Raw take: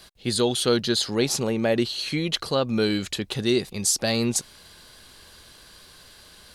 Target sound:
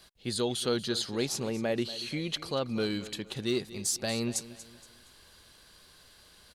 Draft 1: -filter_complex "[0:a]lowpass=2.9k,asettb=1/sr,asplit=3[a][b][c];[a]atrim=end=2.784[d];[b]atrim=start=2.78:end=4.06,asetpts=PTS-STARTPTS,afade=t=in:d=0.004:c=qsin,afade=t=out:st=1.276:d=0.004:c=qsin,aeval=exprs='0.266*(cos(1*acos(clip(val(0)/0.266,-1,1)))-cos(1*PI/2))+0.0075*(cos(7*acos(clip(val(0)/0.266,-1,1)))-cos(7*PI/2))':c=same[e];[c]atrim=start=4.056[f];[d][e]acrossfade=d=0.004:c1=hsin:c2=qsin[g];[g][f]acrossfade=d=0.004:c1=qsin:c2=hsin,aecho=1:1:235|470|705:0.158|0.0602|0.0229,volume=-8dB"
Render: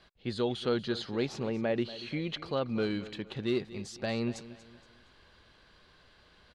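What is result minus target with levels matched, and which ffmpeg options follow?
4000 Hz band -4.5 dB
-filter_complex "[0:a]asettb=1/sr,asplit=3[a][b][c];[a]atrim=end=2.784[d];[b]atrim=start=2.78:end=4.06,asetpts=PTS-STARTPTS,afade=t=in:d=0.004:c=qsin,afade=t=out:st=1.276:d=0.004:c=qsin,aeval=exprs='0.266*(cos(1*acos(clip(val(0)/0.266,-1,1)))-cos(1*PI/2))+0.0075*(cos(7*acos(clip(val(0)/0.266,-1,1)))-cos(7*PI/2))':c=same[e];[c]atrim=start=4.056[f];[d][e]acrossfade=d=0.004:c1=hsin:c2=qsin[g];[g][f]acrossfade=d=0.004:c1=qsin:c2=hsin,aecho=1:1:235|470|705:0.158|0.0602|0.0229,volume=-8dB"

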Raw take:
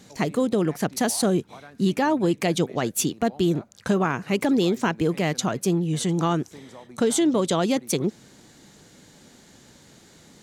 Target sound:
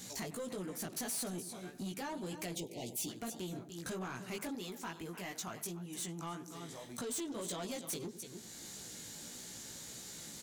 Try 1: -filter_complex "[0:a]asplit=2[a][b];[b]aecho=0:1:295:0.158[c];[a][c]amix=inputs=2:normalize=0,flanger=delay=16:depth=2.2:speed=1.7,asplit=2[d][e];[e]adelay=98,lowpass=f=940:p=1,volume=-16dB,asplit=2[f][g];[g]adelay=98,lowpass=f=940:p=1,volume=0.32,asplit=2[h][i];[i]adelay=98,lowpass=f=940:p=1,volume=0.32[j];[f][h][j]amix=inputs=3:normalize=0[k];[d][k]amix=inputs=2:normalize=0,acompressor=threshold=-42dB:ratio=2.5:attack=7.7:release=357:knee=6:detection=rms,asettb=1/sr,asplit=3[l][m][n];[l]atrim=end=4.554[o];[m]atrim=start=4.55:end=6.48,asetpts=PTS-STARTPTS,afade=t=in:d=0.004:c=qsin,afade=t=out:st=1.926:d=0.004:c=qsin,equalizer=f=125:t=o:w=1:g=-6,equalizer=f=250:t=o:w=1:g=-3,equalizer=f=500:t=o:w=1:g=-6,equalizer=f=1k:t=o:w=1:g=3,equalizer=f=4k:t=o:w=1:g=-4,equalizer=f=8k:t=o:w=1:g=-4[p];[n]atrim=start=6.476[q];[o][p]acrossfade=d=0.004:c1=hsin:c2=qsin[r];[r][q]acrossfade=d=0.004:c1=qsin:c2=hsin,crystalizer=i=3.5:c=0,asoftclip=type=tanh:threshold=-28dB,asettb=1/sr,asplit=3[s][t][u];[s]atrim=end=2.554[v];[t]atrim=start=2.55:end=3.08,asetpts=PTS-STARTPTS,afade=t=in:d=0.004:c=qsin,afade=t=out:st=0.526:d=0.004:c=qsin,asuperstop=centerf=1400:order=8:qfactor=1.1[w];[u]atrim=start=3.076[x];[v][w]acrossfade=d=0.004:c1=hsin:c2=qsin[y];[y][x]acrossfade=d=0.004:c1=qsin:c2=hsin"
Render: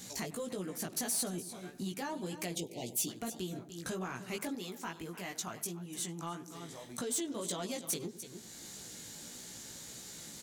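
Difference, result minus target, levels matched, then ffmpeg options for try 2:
soft clip: distortion -6 dB
-filter_complex "[0:a]asplit=2[a][b];[b]aecho=0:1:295:0.158[c];[a][c]amix=inputs=2:normalize=0,flanger=delay=16:depth=2.2:speed=1.7,asplit=2[d][e];[e]adelay=98,lowpass=f=940:p=1,volume=-16dB,asplit=2[f][g];[g]adelay=98,lowpass=f=940:p=1,volume=0.32,asplit=2[h][i];[i]adelay=98,lowpass=f=940:p=1,volume=0.32[j];[f][h][j]amix=inputs=3:normalize=0[k];[d][k]amix=inputs=2:normalize=0,acompressor=threshold=-42dB:ratio=2.5:attack=7.7:release=357:knee=6:detection=rms,asettb=1/sr,asplit=3[l][m][n];[l]atrim=end=4.554[o];[m]atrim=start=4.55:end=6.48,asetpts=PTS-STARTPTS,afade=t=in:d=0.004:c=qsin,afade=t=out:st=1.926:d=0.004:c=qsin,equalizer=f=125:t=o:w=1:g=-6,equalizer=f=250:t=o:w=1:g=-3,equalizer=f=500:t=o:w=1:g=-6,equalizer=f=1k:t=o:w=1:g=3,equalizer=f=4k:t=o:w=1:g=-4,equalizer=f=8k:t=o:w=1:g=-4[p];[n]atrim=start=6.476[q];[o][p]acrossfade=d=0.004:c1=hsin:c2=qsin[r];[r][q]acrossfade=d=0.004:c1=qsin:c2=hsin,crystalizer=i=3.5:c=0,asoftclip=type=tanh:threshold=-36dB,asettb=1/sr,asplit=3[s][t][u];[s]atrim=end=2.554[v];[t]atrim=start=2.55:end=3.08,asetpts=PTS-STARTPTS,afade=t=in:d=0.004:c=qsin,afade=t=out:st=0.526:d=0.004:c=qsin,asuperstop=centerf=1400:order=8:qfactor=1.1[w];[u]atrim=start=3.076[x];[v][w]acrossfade=d=0.004:c1=hsin:c2=qsin[y];[y][x]acrossfade=d=0.004:c1=qsin:c2=hsin"

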